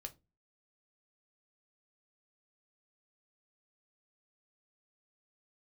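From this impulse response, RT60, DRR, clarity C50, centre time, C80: 0.25 s, 5.5 dB, 20.0 dB, 5 ms, 28.5 dB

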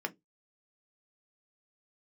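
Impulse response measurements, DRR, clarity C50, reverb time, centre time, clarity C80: 6.0 dB, 26.0 dB, 0.15 s, 4 ms, 35.5 dB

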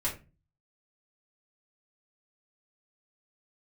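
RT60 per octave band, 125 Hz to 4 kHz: 0.60 s, 0.50 s, 0.30 s, 0.25 s, 0.25 s, 0.20 s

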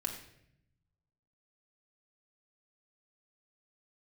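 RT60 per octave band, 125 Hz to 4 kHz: 1.6 s, 1.2 s, 0.85 s, 0.60 s, 0.75 s, 0.60 s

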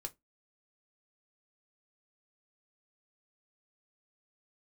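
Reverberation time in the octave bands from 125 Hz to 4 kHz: 0.20 s, 0.25 s, 0.20 s, 0.15 s, 0.15 s, 0.15 s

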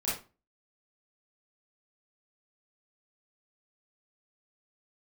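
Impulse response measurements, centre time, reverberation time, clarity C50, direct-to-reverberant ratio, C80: 46 ms, 0.30 s, 2.0 dB, -9.0 dB, 10.5 dB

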